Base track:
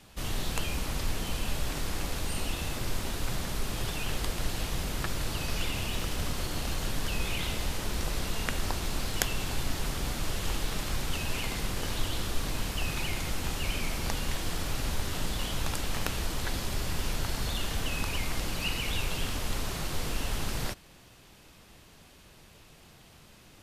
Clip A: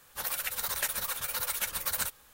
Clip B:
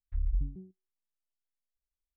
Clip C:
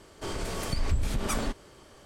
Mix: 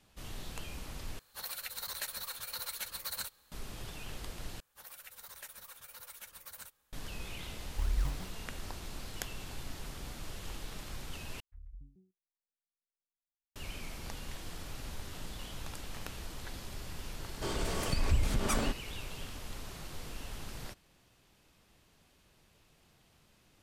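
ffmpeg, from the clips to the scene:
-filter_complex "[1:a]asplit=2[s0][s1];[2:a]asplit=2[s2][s3];[0:a]volume=0.266[s4];[s0]equalizer=f=4200:t=o:w=0.2:g=12[s5];[s2]acrusher=samples=37:mix=1:aa=0.000001:lfo=1:lforange=37:lforate=2.5[s6];[s3]lowshelf=f=190:g=-5[s7];[s4]asplit=4[s8][s9][s10][s11];[s8]atrim=end=1.194[s12];[s5]atrim=end=2.33,asetpts=PTS-STARTPTS,volume=0.355[s13];[s9]atrim=start=3.516:end=4.604[s14];[s1]atrim=end=2.33,asetpts=PTS-STARTPTS,volume=0.133[s15];[s10]atrim=start=6.926:end=11.404[s16];[s7]atrim=end=2.16,asetpts=PTS-STARTPTS,volume=0.168[s17];[s11]atrim=start=13.556[s18];[s6]atrim=end=2.16,asetpts=PTS-STARTPTS,volume=0.841,afade=t=in:d=0.004:c=hsin,afade=t=out:st=2.156:d=0.004:c=hsin,adelay=7640[s19];[3:a]atrim=end=2.05,asetpts=PTS-STARTPTS,volume=0.841,afade=t=in:d=0.004:c=hsin,afade=t=out:st=2.046:d=0.004:c=hsin,adelay=17200[s20];[s12][s13]acrossfade=d=0.004:c1=hsin:c2=hsin[s21];[s21][s14]acrossfade=d=0.004:c1=hsin:c2=hsin[s22];[s22][s15]acrossfade=d=0.004:c1=hsin:c2=hsin[s23];[s23][s16]acrossfade=d=0.004:c1=hsin:c2=hsin[s24];[s24][s17]acrossfade=d=0.004:c1=hsin:c2=hsin[s25];[s25][s18]acrossfade=d=0.004:c1=hsin:c2=hsin[s26];[s26][s19][s20]amix=inputs=3:normalize=0"

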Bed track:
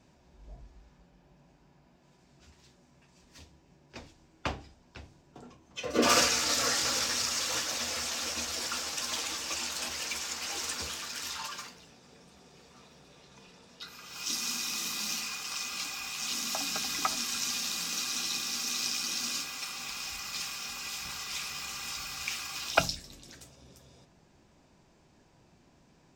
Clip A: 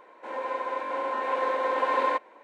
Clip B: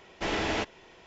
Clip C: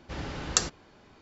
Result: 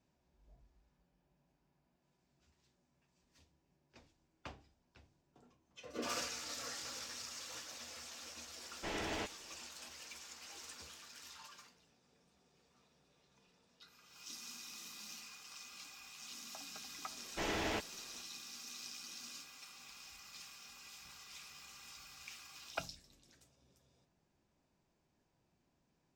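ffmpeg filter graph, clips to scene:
-filter_complex "[2:a]asplit=2[s0][s1];[0:a]volume=0.15[s2];[s0]atrim=end=1.06,asetpts=PTS-STARTPTS,volume=0.282,afade=t=in:d=0.004:c=hsin,afade=t=out:st=1.056:d=0.004:c=hsin,adelay=8620[s3];[s1]atrim=end=1.06,asetpts=PTS-STARTPTS,volume=0.398,afade=t=in:d=0.004:c=hsin,afade=t=out:st=1.056:d=0.004:c=hsin,adelay=756756S[s4];[s2][s3][s4]amix=inputs=3:normalize=0"

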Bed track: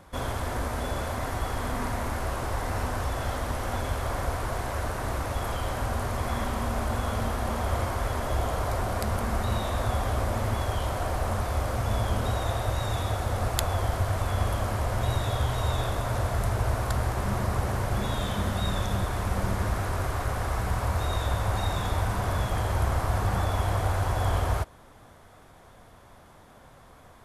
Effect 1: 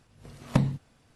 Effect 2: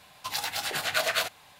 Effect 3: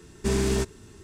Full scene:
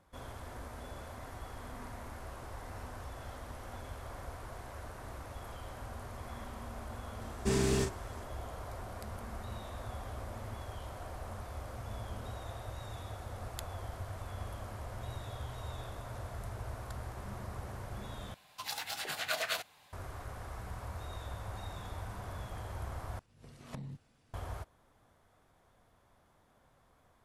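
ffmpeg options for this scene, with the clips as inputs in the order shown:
-filter_complex "[0:a]volume=0.168[s0];[3:a]asplit=2[s1][s2];[s2]adelay=39,volume=0.501[s3];[s1][s3]amix=inputs=2:normalize=0[s4];[1:a]acompressor=threshold=0.0141:ratio=8:attack=19:release=22:knee=1:detection=rms[s5];[s0]asplit=3[s6][s7][s8];[s6]atrim=end=18.344[s9];[2:a]atrim=end=1.59,asetpts=PTS-STARTPTS,volume=0.398[s10];[s7]atrim=start=19.926:end=23.194[s11];[s5]atrim=end=1.15,asetpts=PTS-STARTPTS,volume=0.447[s12];[s8]atrim=start=24.336[s13];[s4]atrim=end=1.03,asetpts=PTS-STARTPTS,volume=0.531,afade=t=in:d=0.004:c=hsin,afade=t=out:st=1.026:d=0.004:c=hsin,adelay=7210[s14];[s9][s10]acrossfade=d=0.004:c1=hsin:c2=hsin[s15];[s15][s11]acrossfade=d=0.004:c1=hsin:c2=hsin[s16];[s16][s12]acrossfade=d=0.004:c1=hsin:c2=hsin[s17];[s17][s13]acrossfade=d=0.004:c1=hsin:c2=hsin[s18];[s18][s14]amix=inputs=2:normalize=0"

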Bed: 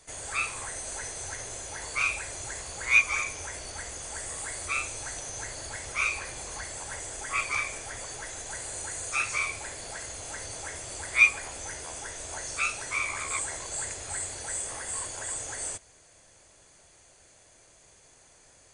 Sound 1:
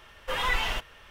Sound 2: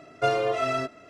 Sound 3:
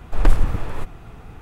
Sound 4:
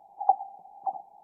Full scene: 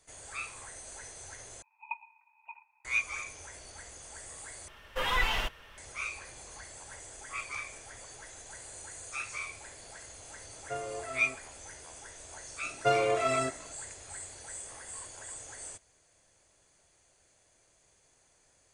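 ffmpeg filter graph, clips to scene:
-filter_complex "[2:a]asplit=2[s0][s1];[0:a]volume=0.335[s2];[4:a]aeval=exprs='val(0)*sin(2*PI*1700*n/s)':c=same[s3];[s0]lowpass=2400[s4];[s2]asplit=3[s5][s6][s7];[s5]atrim=end=1.624[s8];[s3]atrim=end=1.23,asetpts=PTS-STARTPTS,volume=0.2[s9];[s6]atrim=start=2.846:end=4.684[s10];[1:a]atrim=end=1.1,asetpts=PTS-STARTPTS,volume=0.841[s11];[s7]atrim=start=5.776[s12];[s4]atrim=end=1.09,asetpts=PTS-STARTPTS,volume=0.2,afade=t=in:d=0.004:c=hsin,afade=t=out:st=1.086:d=0.004:c=hsin,adelay=10480[s13];[s1]atrim=end=1.09,asetpts=PTS-STARTPTS,volume=0.75,afade=t=in:d=0.004:c=hsin,afade=t=out:st=1.086:d=0.004:c=hsin,adelay=12630[s14];[s8][s9]acrossfade=d=0.004:c1=hsin:c2=hsin[s15];[s15][s10]acrossfade=d=0.004:c1=hsin:c2=hsin[s16];[s16][s11]acrossfade=d=0.004:c1=hsin:c2=hsin[s17];[s17][s12]acrossfade=d=0.004:c1=hsin:c2=hsin[s18];[s18][s13][s14]amix=inputs=3:normalize=0"

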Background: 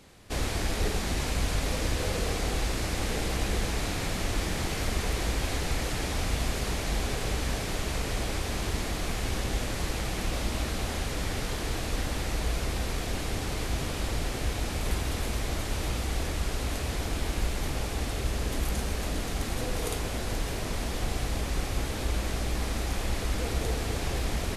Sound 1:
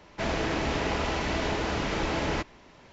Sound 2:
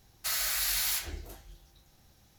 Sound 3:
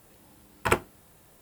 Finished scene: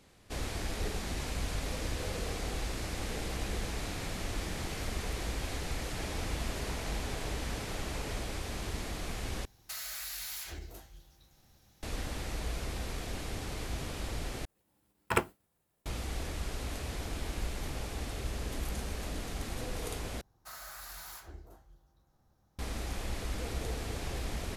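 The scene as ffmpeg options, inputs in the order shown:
-filter_complex "[2:a]asplit=2[s0][s1];[0:a]volume=0.447[s2];[s0]acompressor=threshold=0.0178:ratio=6:attack=3.2:release=140:knee=1:detection=peak[s3];[3:a]agate=range=0.0224:threshold=0.00447:ratio=3:release=100:detection=peak[s4];[s1]highshelf=f=1700:t=q:w=1.5:g=-10[s5];[s2]asplit=4[s6][s7][s8][s9];[s6]atrim=end=9.454[s10];[s3]atrim=end=2.38,asetpts=PTS-STARTPTS,volume=0.794[s11];[s7]atrim=start=11.826:end=14.454[s12];[s4]atrim=end=1.41,asetpts=PTS-STARTPTS,volume=0.562[s13];[s8]atrim=start=15.856:end=20.214[s14];[s5]atrim=end=2.38,asetpts=PTS-STARTPTS,volume=0.422[s15];[s9]atrim=start=22.586[s16];[1:a]atrim=end=2.92,asetpts=PTS-STARTPTS,volume=0.133,afade=t=in:d=0.004:c=hsin,afade=t=out:st=2.916:d=0.004:c=hsin,adelay=5780[s17];[s10][s11]acrossfade=d=0.004:c1=hsin:c2=hsin[s18];[s18][s12]acrossfade=d=0.004:c1=hsin:c2=hsin[s19];[s19][s13]acrossfade=d=0.004:c1=hsin:c2=hsin[s20];[s20][s14]acrossfade=d=0.004:c1=hsin:c2=hsin[s21];[s21][s15]acrossfade=d=0.004:c1=hsin:c2=hsin[s22];[s22][s16]acrossfade=d=0.004:c1=hsin:c2=hsin[s23];[s23][s17]amix=inputs=2:normalize=0"

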